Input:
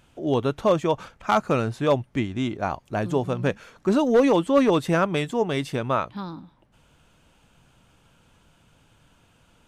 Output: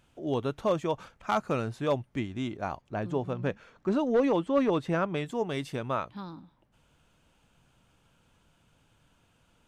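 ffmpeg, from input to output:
-filter_complex "[0:a]asettb=1/sr,asplit=3[s0][s1][s2];[s0]atrim=end=2.814[s3];[s1]atrim=start=2.81:end=5.26,asetpts=PTS-STARTPTS,afade=t=in:d=0.004:c=qsin,afade=t=out:st=2.446:d=0.004:c=qsin,aemphasis=mode=reproduction:type=50fm[s4];[s2]atrim=start=5.256[s5];[s3][s4]acrossfade=d=0.004:c1=hsin:c2=qsin[s6];[s6][s5]acrossfade=d=0.004:c1=qsin:c2=hsin,volume=0.447"

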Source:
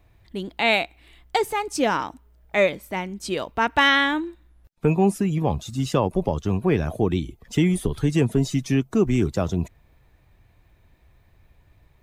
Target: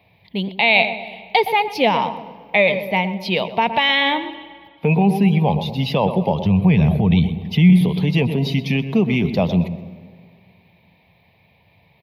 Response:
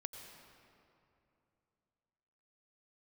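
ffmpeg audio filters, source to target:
-filter_complex "[0:a]highpass=f=92:w=0.5412,highpass=f=92:w=1.3066,asplit=3[s0][s1][s2];[s0]afade=t=out:st=6.41:d=0.02[s3];[s1]asubboost=boost=4.5:cutoff=170,afade=t=in:st=6.41:d=0.02,afade=t=out:st=7.74:d=0.02[s4];[s2]afade=t=in:st=7.74:d=0.02[s5];[s3][s4][s5]amix=inputs=3:normalize=0,asplit=2[s6][s7];[s7]adelay=115,lowpass=f=1000:p=1,volume=0.282,asplit=2[s8][s9];[s9]adelay=115,lowpass=f=1000:p=1,volume=0.54,asplit=2[s10][s11];[s11]adelay=115,lowpass=f=1000:p=1,volume=0.54,asplit=2[s12][s13];[s13]adelay=115,lowpass=f=1000:p=1,volume=0.54,asplit=2[s14][s15];[s15]adelay=115,lowpass=f=1000:p=1,volume=0.54,asplit=2[s16][s17];[s17]adelay=115,lowpass=f=1000:p=1,volume=0.54[s18];[s6][s8][s10][s12][s14][s16][s18]amix=inputs=7:normalize=0,asplit=2[s19][s20];[1:a]atrim=start_sample=2205,asetrate=52920,aresample=44100,adelay=128[s21];[s20][s21]afir=irnorm=-1:irlink=0,volume=0.2[s22];[s19][s22]amix=inputs=2:normalize=0,alimiter=limit=0.2:level=0:latency=1:release=23,firequalizer=gain_entry='entry(120,0);entry(180,9);entry(320,-5);entry(460,5);entry(910,8);entry(1400,-11);entry(2200,12);entry(4500,6);entry(7900,-29);entry(11000,0)':delay=0.05:min_phase=1,volume=1.19"

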